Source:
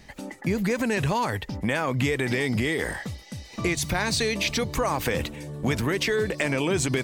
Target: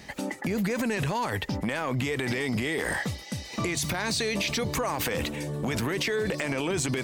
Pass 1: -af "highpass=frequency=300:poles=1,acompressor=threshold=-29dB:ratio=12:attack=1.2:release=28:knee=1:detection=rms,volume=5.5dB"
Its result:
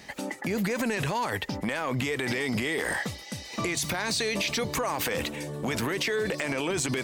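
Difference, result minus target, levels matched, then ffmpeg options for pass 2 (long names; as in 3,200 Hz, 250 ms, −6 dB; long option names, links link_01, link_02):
125 Hz band −3.0 dB
-af "highpass=frequency=130:poles=1,acompressor=threshold=-29dB:ratio=12:attack=1.2:release=28:knee=1:detection=rms,volume=5.5dB"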